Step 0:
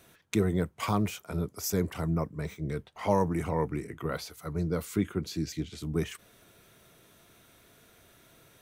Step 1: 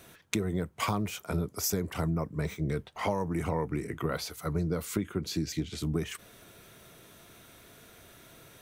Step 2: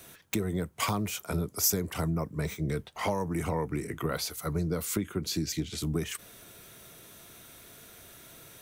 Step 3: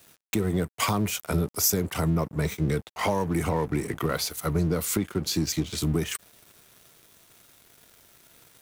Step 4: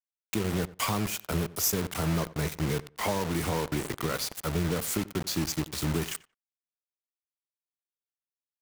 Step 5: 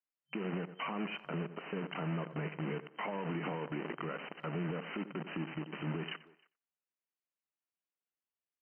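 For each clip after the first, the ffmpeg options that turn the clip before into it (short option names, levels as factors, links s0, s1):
-af "acompressor=threshold=0.0282:ratio=12,volume=1.78"
-filter_complex "[0:a]acrossover=split=260[s0][s1];[s1]aeval=exprs='0.1*(abs(mod(val(0)/0.1+3,4)-2)-1)':c=same[s2];[s0][s2]amix=inputs=2:normalize=0,highshelf=f=4800:g=7.5"
-filter_complex "[0:a]asplit=2[s0][s1];[s1]alimiter=limit=0.0708:level=0:latency=1:release=80,volume=1.19[s2];[s0][s2]amix=inputs=2:normalize=0,aeval=exprs='sgn(val(0))*max(abs(val(0))-0.00794,0)':c=same"
-filter_complex "[0:a]acrusher=bits=4:mix=0:aa=0.000001,asplit=2[s0][s1];[s1]adelay=90,lowpass=f=2300:p=1,volume=0.126,asplit=2[s2][s3];[s3]adelay=90,lowpass=f=2300:p=1,volume=0.18[s4];[s0][s2][s4]amix=inputs=3:normalize=0,volume=0.631"
-filter_complex "[0:a]afftfilt=real='re*between(b*sr/4096,140,3100)':imag='im*between(b*sr/4096,140,3100)':win_size=4096:overlap=0.75,asplit=2[s0][s1];[s1]adelay=310,highpass=300,lowpass=3400,asoftclip=type=hard:threshold=0.0562,volume=0.0355[s2];[s0][s2]amix=inputs=2:normalize=0,alimiter=level_in=1.78:limit=0.0631:level=0:latency=1:release=104,volume=0.562"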